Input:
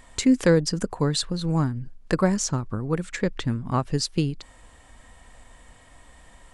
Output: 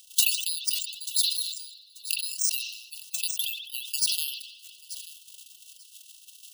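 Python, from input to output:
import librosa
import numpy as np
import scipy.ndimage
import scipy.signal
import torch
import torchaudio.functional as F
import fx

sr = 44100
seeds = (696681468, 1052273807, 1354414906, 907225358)

p1 = fx.spec_quant(x, sr, step_db=30)
p2 = fx.transient(p1, sr, attack_db=5, sustain_db=-12)
p3 = fx.brickwall_highpass(p2, sr, low_hz=2600.0)
p4 = p3 + fx.echo_feedback(p3, sr, ms=887, feedback_pct=21, wet_db=-22.5, dry=0)
p5 = (np.kron(scipy.signal.resample_poly(p4, 1, 3), np.eye(3)[0]) * 3)[:len(p4)]
p6 = fx.rev_spring(p5, sr, rt60_s=4.0, pass_ms=(51,), chirp_ms=30, drr_db=15.5)
p7 = fx.over_compress(p6, sr, threshold_db=-36.0, ratio=-0.5)
p8 = p6 + (p7 * librosa.db_to_amplitude(-2.0))
p9 = fx.buffer_glitch(p8, sr, at_s=(0.75, 1.61, 2.46, 3.9, 4.64), block=512, repeats=2)
y = fx.sustainer(p9, sr, db_per_s=63.0)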